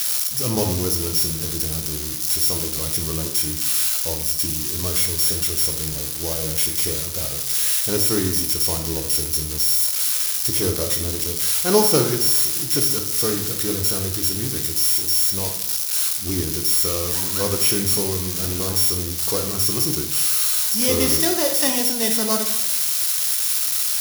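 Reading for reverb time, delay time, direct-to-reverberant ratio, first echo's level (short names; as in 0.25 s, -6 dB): 0.85 s, none, 4.0 dB, none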